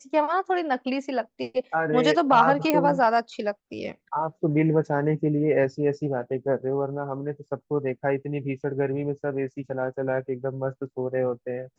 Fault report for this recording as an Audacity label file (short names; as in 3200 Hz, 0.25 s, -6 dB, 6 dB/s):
2.700000	2.700000	pop -8 dBFS